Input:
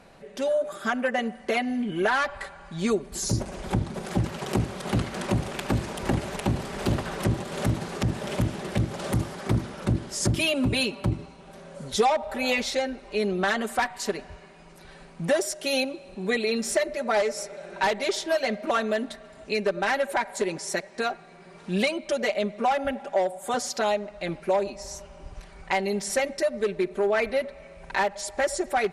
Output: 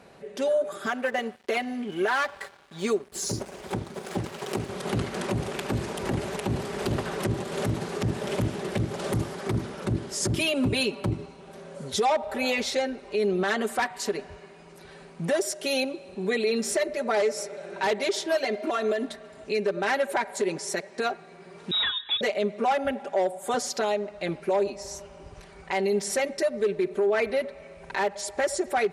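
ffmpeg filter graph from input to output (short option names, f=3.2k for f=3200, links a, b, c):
-filter_complex "[0:a]asettb=1/sr,asplit=3[a][b][c];[a]atrim=end=0.864[d];[b]atrim=start=0.86:end=4.69,asetpts=PTS-STARTPTS,afade=t=in:d=0.004:c=qsin,afade=t=out:st=3.826:d=0.004:c=qsin,lowshelf=f=240:g=-8,aeval=exprs='sgn(val(0))*max(abs(val(0))-0.00447,0)':c=same[e];[c]atrim=start=4.686[f];[d][e]acrossfade=d=0.004:c1=hsin:c2=qsin[g];[g][f]acrossfade=d=0.004:c1=qsin:c2=hsin,asettb=1/sr,asplit=3[h][i][j];[h]atrim=end=18.444[k];[i]atrim=start=18.44:end=19.07,asetpts=PTS-STARTPTS,afade=t=in:d=0.004:c=qsin,afade=t=out:st=0.626:d=0.004:c=qsin,aecho=1:1:2.9:0.67,atrim=end_sample=27783,acompressor=threshold=-24dB:ratio=5:attack=3.2:release=140:knee=1:detection=peak[l];[j]atrim=start=19.066[m];[k][l]acrossfade=d=0.004:c1=hsin:c2=qsin[n];[n][m]acrossfade=d=0.004:c1=qsin:c2=hsin,asettb=1/sr,asplit=3[o][p][q];[o]atrim=end=21.714[r];[p]atrim=start=21.71:end=22.21,asetpts=PTS-STARTPTS,afade=t=in:d=0.004:c=qsin,afade=t=out:st=0.496:d=0.004:c=qsin,asoftclip=type=hard:threshold=-21dB,lowpass=f=3.4k:t=q:w=0.5098,lowpass=f=3.4k:t=q:w=0.6013,lowpass=f=3.4k:t=q:w=0.9,lowpass=f=3.4k:t=q:w=2.563,afreqshift=-4000[s];[q]atrim=start=22.206[t];[r][s]acrossfade=d=0.004:c1=hsin:c2=qsin[u];[u][t]acrossfade=d=0.004:c1=qsin:c2=hsin,highpass=67,equalizer=f=410:t=o:w=0.3:g=6.5,alimiter=limit=-17dB:level=0:latency=1:release=54"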